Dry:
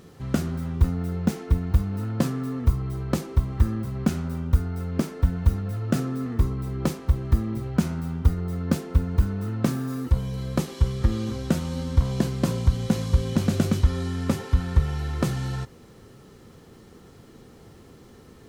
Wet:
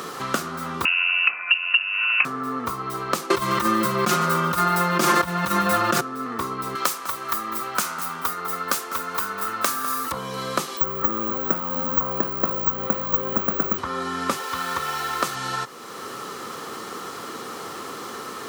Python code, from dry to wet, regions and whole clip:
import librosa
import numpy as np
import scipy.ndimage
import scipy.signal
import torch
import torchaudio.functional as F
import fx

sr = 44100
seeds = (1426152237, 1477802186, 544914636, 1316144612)

y = fx.chain(x, sr, fx.freq_invert(carrier_hz=2800),
    fx.band_squash(depth_pct=40), at=(0.85, 2.25))
y = fx.chain(y, sr, fx.comb(ms=5.7, depth=0.92),
    fx.echo_single(ms=142, db=-20.0),
    fx.env_flatten(amount_pct=100), at=(3.3, 6.01))
y = fx.chain(y, sr, fx.tilt_eq(slope=4.5),
    fx.echo_single(ms=200, db=-16.0), at=(6.75, 10.12))
y = fx.chain(y, sr, fx.air_absorb(metres=210.0),
    fx.resample_bad(factor=2, down='filtered', up='zero_stuff'), at=(10.77, 13.78))
y = fx.chain(y, sr, fx.low_shelf(hz=230.0, db=-8.0),
    fx.quant_dither(seeds[0], bits=8, dither='none'), at=(14.36, 15.35))
y = scipy.signal.sosfilt(scipy.signal.butter(2, 330.0, 'highpass', fs=sr, output='sos'), y)
y = fx.peak_eq(y, sr, hz=1200.0, db=14.0, octaves=0.73)
y = fx.band_squash(y, sr, depth_pct=70)